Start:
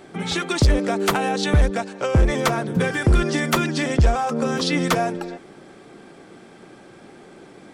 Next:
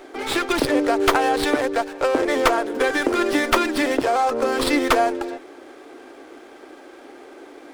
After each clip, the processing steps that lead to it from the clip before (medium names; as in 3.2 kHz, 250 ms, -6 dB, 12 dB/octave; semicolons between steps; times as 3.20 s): elliptic high-pass 270 Hz, stop band 40 dB; sliding maximum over 5 samples; trim +4 dB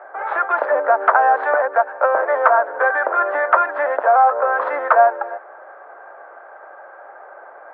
Chebyshev band-pass 580–1600 Hz, order 3; loudness maximiser +9.5 dB; trim -1 dB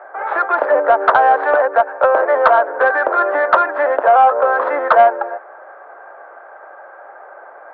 dynamic bell 290 Hz, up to +7 dB, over -34 dBFS, Q 0.88; saturation -1.5 dBFS, distortion -25 dB; trim +2 dB